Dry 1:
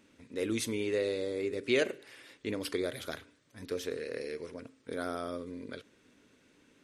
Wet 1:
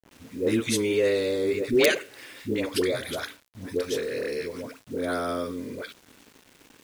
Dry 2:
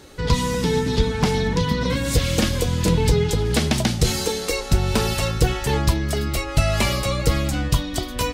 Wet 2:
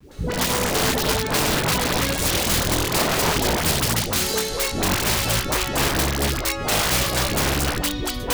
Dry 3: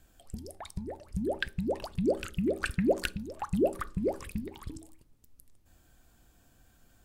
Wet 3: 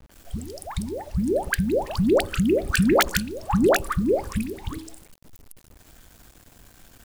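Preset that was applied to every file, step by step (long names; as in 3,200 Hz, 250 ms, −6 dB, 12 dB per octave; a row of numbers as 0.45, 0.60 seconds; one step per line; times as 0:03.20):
wrap-around overflow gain 16.5 dB
all-pass dispersion highs, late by 115 ms, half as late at 540 Hz
bit-depth reduction 10 bits, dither none
normalise the peak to −6 dBFS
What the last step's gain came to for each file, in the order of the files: +8.5, +1.0, +9.5 decibels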